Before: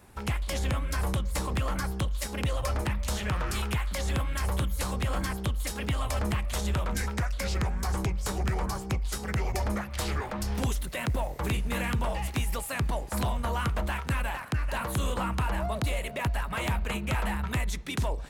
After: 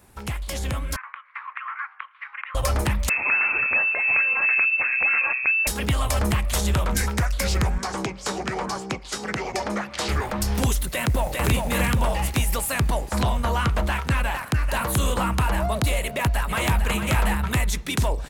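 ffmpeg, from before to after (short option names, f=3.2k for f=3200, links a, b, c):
-filter_complex "[0:a]asettb=1/sr,asplit=3[a][b][c];[a]atrim=end=0.964[d];[b]atrim=start=0.96:end=2.55,asetpts=PTS-STARTPTS,afade=t=in:d=0.004:c=qsin,afade=t=out:st=1.586:d=0.004:c=qsin,asuperpass=centerf=1600:order=8:qfactor=1.2[e];[c]atrim=start=2.546[f];[d][e]acrossfade=d=0.004:c1=hsin:c2=qsin[g];[g][f]acrossfade=d=0.004:c1=qsin:c2=hsin,asettb=1/sr,asplit=3[h][i][j];[h]atrim=end=3.094[k];[i]atrim=start=3.09:end=5.67,asetpts=PTS-STARTPTS,afade=t=in:d=0.004:c=qsin,afade=t=out:st=2.576:d=0.004:c=qsin,lowpass=f=2.3k:t=q:w=0.5098,lowpass=f=2.3k:t=q:w=0.6013,lowpass=f=2.3k:t=q:w=0.9,lowpass=f=2.3k:t=q:w=2.563,afreqshift=-2700[l];[j]atrim=start=5.666[m];[k][l]acrossfade=d=0.004:c1=hsin:c2=qsin[n];[n][m]acrossfade=d=0.004:c1=qsin:c2=hsin,asettb=1/sr,asplit=3[o][p][q];[o]atrim=end=7.784[r];[p]atrim=start=7.78:end=10.09,asetpts=PTS-STARTPTS,afade=t=in:d=0.004:c=qsin,afade=t=out:st=2.306:d=0.004:c=qsin,acrossover=split=170 7600:gain=0.0794 1 0.0708[s][t][u];[s][t][u]amix=inputs=3:normalize=0[v];[q]atrim=start=10.086[w];[r][v]acrossfade=d=0.004:c1=hsin:c2=qsin[x];[x][w]acrossfade=d=0.004:c1=qsin:c2=hsin,asplit=2[y][z];[z]afade=t=in:st=10.86:d=0.01,afade=t=out:st=11.45:d=0.01,aecho=0:1:400|800|1200|1600|2000:0.707946|0.283178|0.113271|0.0453085|0.0181234[aa];[y][aa]amix=inputs=2:normalize=0,asettb=1/sr,asplit=3[ab][ac][ad];[ab]atrim=end=13.024[ae];[ac]atrim=start=13.02:end=14.36,asetpts=PTS-STARTPTS,afade=t=in:d=0.004:c=qsin,afade=t=out:st=1.336:d=0.004:c=qsin,acrossover=split=7000[af][ag];[ag]acompressor=threshold=-55dB:ratio=4:attack=1:release=60[ah];[af][ah]amix=inputs=2:normalize=0[ai];[ad]atrim=start=14.356[aj];[ae][ai]acrossfade=d=0.004:c1=hsin:c2=qsin[ak];[ak][aj]acrossfade=d=0.004:c1=qsin:c2=hsin,asplit=2[al][am];[am]afade=t=in:st=16.02:d=0.01,afade=t=out:st=16.89:d=0.01,aecho=0:1:450|900|1350:0.398107|0.0995268|0.0248817[an];[al][an]amix=inputs=2:normalize=0,highshelf=f=6k:g=5.5,dynaudnorm=f=170:g=13:m=6.5dB"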